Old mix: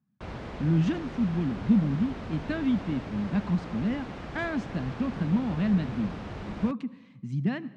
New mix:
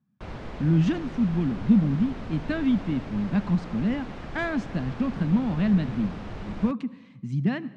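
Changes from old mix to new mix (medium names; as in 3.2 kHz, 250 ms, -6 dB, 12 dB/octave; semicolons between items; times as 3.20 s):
speech +3.0 dB; background: remove high-pass 44 Hz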